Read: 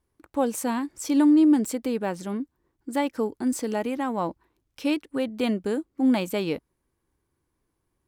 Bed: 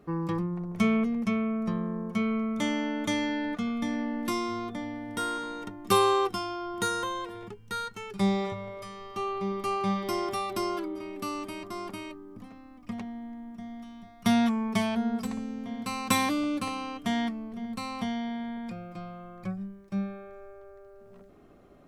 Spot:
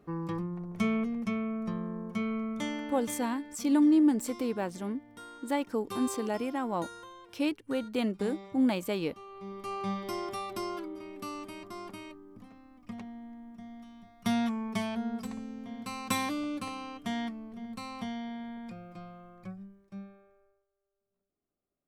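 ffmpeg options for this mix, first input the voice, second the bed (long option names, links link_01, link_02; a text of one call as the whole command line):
ffmpeg -i stem1.wav -i stem2.wav -filter_complex "[0:a]adelay=2550,volume=-5dB[link_01];[1:a]volume=6.5dB,afade=type=out:start_time=2.52:duration=0.77:silence=0.251189,afade=type=in:start_time=9.28:duration=0.59:silence=0.281838,afade=type=out:start_time=19.02:duration=1.64:silence=0.0354813[link_02];[link_01][link_02]amix=inputs=2:normalize=0" out.wav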